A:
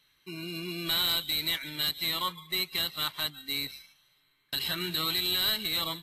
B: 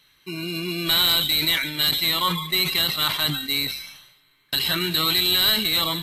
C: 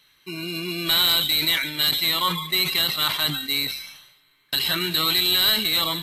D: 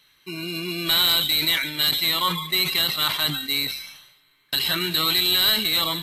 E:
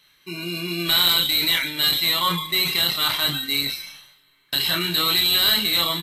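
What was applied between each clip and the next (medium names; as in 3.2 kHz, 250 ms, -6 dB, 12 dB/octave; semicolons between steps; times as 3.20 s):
decay stretcher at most 63 dB/s; trim +8.5 dB
bass shelf 250 Hz -4 dB
no audible change
doubling 29 ms -5 dB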